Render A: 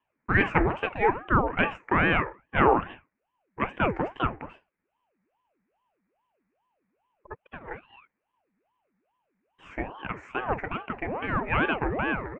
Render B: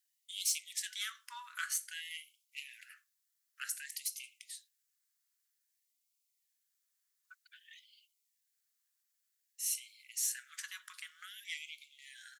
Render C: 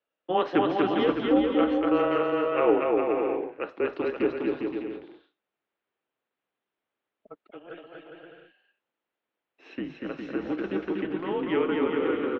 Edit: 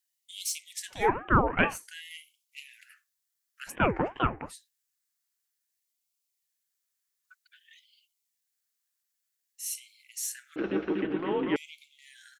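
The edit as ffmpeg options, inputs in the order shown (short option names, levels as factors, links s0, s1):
-filter_complex "[0:a]asplit=2[s0][s1];[1:a]asplit=4[s2][s3][s4][s5];[s2]atrim=end=1.12[s6];[s0]atrim=start=0.88:end=1.89[s7];[s3]atrim=start=1.65:end=3.76[s8];[s1]atrim=start=3.66:end=4.54[s9];[s4]atrim=start=4.44:end=10.562[s10];[2:a]atrim=start=10.558:end=11.562[s11];[s5]atrim=start=11.558[s12];[s6][s7]acrossfade=d=0.24:c1=tri:c2=tri[s13];[s13][s8]acrossfade=d=0.24:c1=tri:c2=tri[s14];[s14][s9]acrossfade=d=0.1:c1=tri:c2=tri[s15];[s15][s10]acrossfade=d=0.1:c1=tri:c2=tri[s16];[s16][s11]acrossfade=d=0.004:c1=hsin:c2=hsin[s17];[s17][s12]acrossfade=d=0.004:c1=hsin:c2=hsin"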